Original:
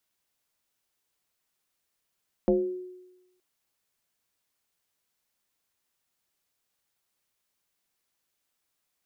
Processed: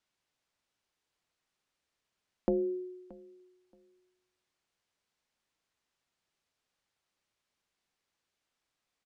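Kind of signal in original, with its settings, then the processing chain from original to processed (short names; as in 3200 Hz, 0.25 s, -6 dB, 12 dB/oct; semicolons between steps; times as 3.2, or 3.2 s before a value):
FM tone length 0.92 s, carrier 365 Hz, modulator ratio 0.45, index 1.4, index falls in 0.60 s exponential, decay 1.02 s, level -17 dB
compressor, threshold -26 dBFS; air absorption 75 m; feedback echo 0.626 s, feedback 20%, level -21 dB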